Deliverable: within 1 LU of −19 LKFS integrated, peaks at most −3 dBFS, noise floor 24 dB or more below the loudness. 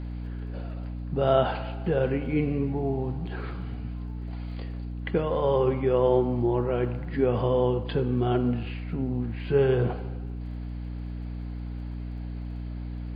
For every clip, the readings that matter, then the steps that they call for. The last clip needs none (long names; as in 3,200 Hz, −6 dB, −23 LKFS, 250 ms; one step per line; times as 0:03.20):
crackle rate 21 per second; mains hum 60 Hz; hum harmonics up to 300 Hz; level of the hum −32 dBFS; integrated loudness −28.0 LKFS; sample peak −9.0 dBFS; target loudness −19.0 LKFS
→ click removal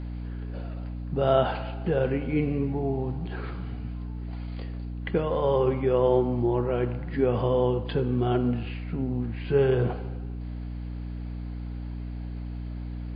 crackle rate 0 per second; mains hum 60 Hz; hum harmonics up to 300 Hz; level of the hum −32 dBFS
→ hum removal 60 Hz, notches 5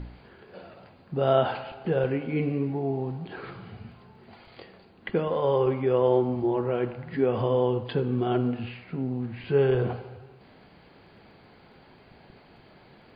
mains hum none found; integrated loudness −27.0 LKFS; sample peak −9.0 dBFS; target loudness −19.0 LKFS
→ level +8 dB
brickwall limiter −3 dBFS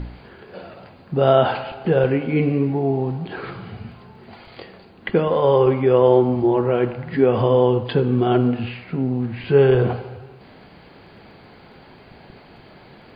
integrated loudness −19.0 LKFS; sample peak −3.0 dBFS; background noise floor −47 dBFS